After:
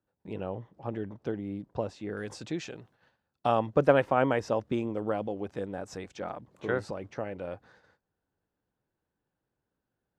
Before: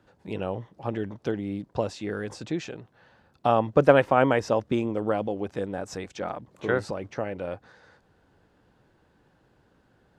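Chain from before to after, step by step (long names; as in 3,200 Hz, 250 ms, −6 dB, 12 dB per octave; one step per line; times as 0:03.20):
high-shelf EQ 2,200 Hz −8 dB, from 0:02.17 +3.5 dB, from 0:03.66 −2 dB
noise gate −55 dBFS, range −17 dB
level −4.5 dB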